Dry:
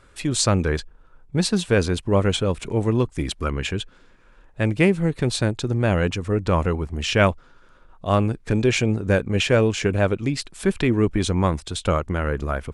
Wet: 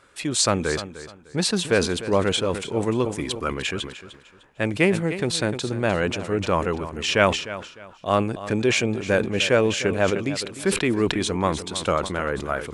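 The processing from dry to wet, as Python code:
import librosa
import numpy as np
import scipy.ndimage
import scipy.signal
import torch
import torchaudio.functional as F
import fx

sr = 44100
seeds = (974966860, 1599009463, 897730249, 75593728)

y = fx.highpass(x, sr, hz=310.0, slope=6)
y = fx.echo_feedback(y, sr, ms=302, feedback_pct=29, wet_db=-14.5)
y = fx.sustainer(y, sr, db_per_s=99.0)
y = y * librosa.db_to_amplitude(1.0)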